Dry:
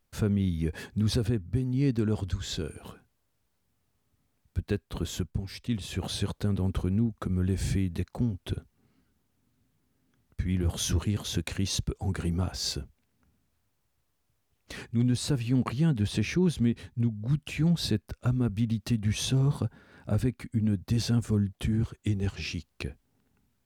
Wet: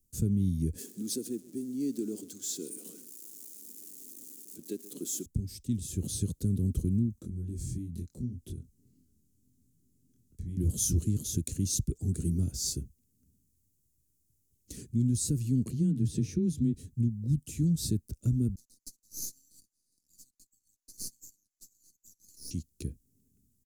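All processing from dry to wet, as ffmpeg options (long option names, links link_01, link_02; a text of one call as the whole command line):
ffmpeg -i in.wav -filter_complex "[0:a]asettb=1/sr,asplit=3[link_01][link_02][link_03];[link_01]atrim=end=0.784[link_04];[link_02]atrim=start=0.78:end=5.26,asetpts=PTS-STARTPTS,afade=type=in:duration=0.004:curve=qsin,afade=type=out:start_time=4.476:duration=0.004:curve=qsin,aeval=exprs='val(0)+0.5*0.00891*sgn(val(0))':channel_layout=same,highpass=frequency=270:width=0.5412,highpass=frequency=270:width=1.3066,aecho=1:1:132:0.112,atrim=end_sample=197568[link_05];[link_03]atrim=start=5.256[link_06];[link_04][link_05]acrossfade=duration=0.004:curve1=hsin:curve2=qsin[link_07];[link_07][link_06]acrossfade=duration=0.004:curve1=qsin:curve2=hsin,asettb=1/sr,asplit=3[link_08][link_09][link_10];[link_08]atrim=end=7.204[link_11];[link_09]atrim=start=7.2:end=10.57,asetpts=PTS-STARTPTS,afade=type=in:duration=0.004:curve=qsin,afade=type=out:start_time=3.366:duration=0.004:curve=qsin,highshelf=frequency=9400:gain=-6,acompressor=threshold=-42dB:ratio=2:attack=3.2:release=140:knee=1:detection=peak,asplit=2[link_12][link_13];[link_13]adelay=24,volume=-3dB[link_14];[link_12][link_14]amix=inputs=2:normalize=0,atrim=end_sample=148617[link_15];[link_10]atrim=start=10.566[link_16];[link_11][link_15]acrossfade=duration=0.004:curve1=hsin:curve2=qsin[link_17];[link_17][link_16]acrossfade=duration=0.004:curve1=qsin:curve2=hsin,asettb=1/sr,asplit=3[link_18][link_19][link_20];[link_18]atrim=end=15.714[link_21];[link_19]atrim=start=15.71:end=16.74,asetpts=PTS-STARTPTS,afade=type=in:duration=0.004:curve=qsin,afade=type=out:start_time=1.026:duration=0.004:curve=qsin,aemphasis=mode=reproduction:type=cd,afreqshift=17,bandreject=frequency=149.2:width_type=h:width=4,bandreject=frequency=298.4:width_type=h:width=4,bandreject=frequency=447.6:width_type=h:width=4,bandreject=frequency=596.8:width_type=h:width=4,bandreject=frequency=746:width_type=h:width=4,bandreject=frequency=895.2:width_type=h:width=4,bandreject=frequency=1044.4:width_type=h:width=4,bandreject=frequency=1193.6:width_type=h:width=4,bandreject=frequency=1342.8:width_type=h:width=4,bandreject=frequency=1492:width_type=h:width=4,bandreject=frequency=1641.2:width_type=h:width=4,bandreject=frequency=1790.4:width_type=h:width=4,bandreject=frequency=1939.6:width_type=h:width=4,bandreject=frequency=2088.8:width_type=h:width=4,bandreject=frequency=2238:width_type=h:width=4,bandreject=frequency=2387.2:width_type=h:width=4,bandreject=frequency=2536.4:width_type=h:width=4,bandreject=frequency=2685.6:width_type=h:width=4,bandreject=frequency=2834.8:width_type=h:width=4,bandreject=frequency=2984:width_type=h:width=4,bandreject=frequency=3133.2:width_type=h:width=4,bandreject=frequency=3282.4:width_type=h:width=4,bandreject=frequency=3431.6:width_type=h:width=4,bandreject=frequency=3580.8:width_type=h:width=4,bandreject=frequency=3730:width_type=h:width=4,bandreject=frequency=3879.2:width_type=h:width=4,bandreject=frequency=4028.4:width_type=h:width=4[link_22];[link_20]atrim=start=16.736[link_23];[link_21][link_22]acrossfade=duration=0.004:curve1=hsin:curve2=qsin[link_24];[link_24][link_23]acrossfade=duration=0.004:curve1=qsin:curve2=hsin,asettb=1/sr,asplit=3[link_25][link_26][link_27];[link_25]atrim=end=18.554[link_28];[link_26]atrim=start=18.55:end=22.51,asetpts=PTS-STARTPTS,afade=type=in:duration=0.004:curve=qsin,afade=type=out:start_time=3.956:duration=0.004:curve=qsin,asuperpass=centerf=5700:order=12:qfactor=1.6,aecho=1:1:3.9:0.58,atrim=end_sample=174636,aeval=exprs='max(val(0),0)':channel_layout=same[link_29];[link_27]atrim=start=22.506[link_30];[link_28][link_29]acrossfade=duration=0.004:curve1=hsin:curve2=qsin[link_31];[link_31][link_30]acrossfade=duration=0.004:curve1=qsin:curve2=hsin,acrossover=split=120|3000[link_32][link_33][link_34];[link_33]acompressor=threshold=-27dB:ratio=2.5[link_35];[link_32][link_35][link_34]amix=inputs=3:normalize=0,firequalizer=gain_entry='entry(310,0);entry(780,-29);entry(6800,6)':delay=0.05:min_phase=1" out.wav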